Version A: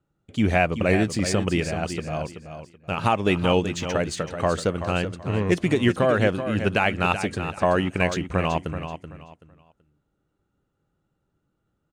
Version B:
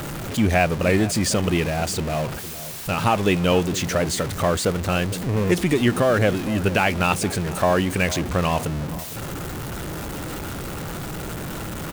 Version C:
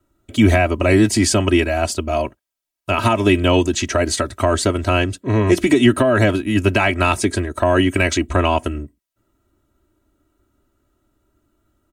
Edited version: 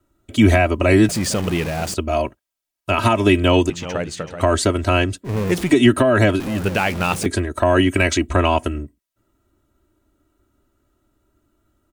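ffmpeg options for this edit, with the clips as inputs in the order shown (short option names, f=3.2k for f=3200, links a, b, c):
-filter_complex "[1:a]asplit=3[a][b][c];[2:a]asplit=5[d][e][f][g][h];[d]atrim=end=1.092[i];[a]atrim=start=1.088:end=1.942[j];[e]atrim=start=1.938:end=3.702[k];[0:a]atrim=start=3.698:end=4.412[l];[f]atrim=start=4.408:end=5.3[m];[b]atrim=start=5.24:end=5.73[n];[g]atrim=start=5.67:end=6.402[o];[c]atrim=start=6.398:end=7.262[p];[h]atrim=start=7.258[q];[i][j]acrossfade=d=0.004:c1=hsin:c2=hsin[r];[r][k]acrossfade=d=0.004:c1=hsin:c2=hsin[s];[s][l]acrossfade=d=0.004:c1=hsin:c2=hsin[t];[t][m]acrossfade=d=0.004:c1=hsin:c2=hsin[u];[u][n]acrossfade=d=0.06:c1=tri:c2=tri[v];[v][o]acrossfade=d=0.06:c1=tri:c2=tri[w];[w][p]acrossfade=d=0.004:c1=hsin:c2=hsin[x];[x][q]acrossfade=d=0.004:c1=hsin:c2=hsin"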